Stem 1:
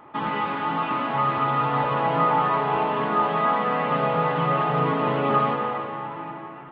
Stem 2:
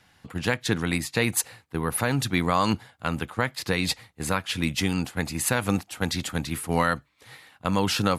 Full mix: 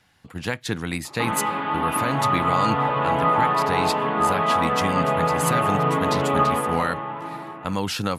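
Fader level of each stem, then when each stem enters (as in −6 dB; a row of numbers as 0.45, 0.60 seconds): +1.0, −2.0 decibels; 1.05, 0.00 seconds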